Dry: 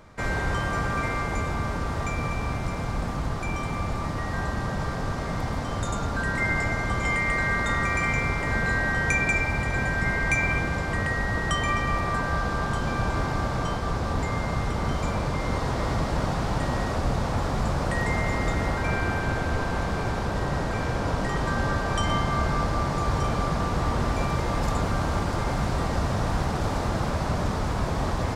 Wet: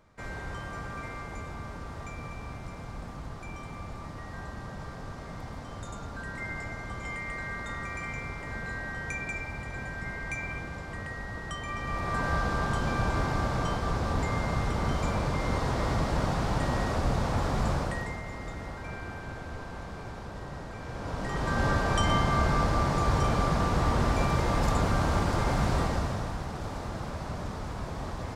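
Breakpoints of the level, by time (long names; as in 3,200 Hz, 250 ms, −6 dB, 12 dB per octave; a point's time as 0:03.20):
0:11.66 −11.5 dB
0:12.26 −2 dB
0:17.74 −2 dB
0:18.21 −13 dB
0:20.80 −13 dB
0:21.66 −0.5 dB
0:25.78 −0.5 dB
0:26.38 −9.5 dB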